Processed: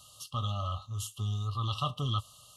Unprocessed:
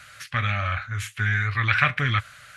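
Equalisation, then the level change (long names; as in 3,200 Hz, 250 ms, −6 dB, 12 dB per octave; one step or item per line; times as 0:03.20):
linear-phase brick-wall band-stop 1,300–2,700 Hz
high-shelf EQ 6,700 Hz +9.5 dB
−6.5 dB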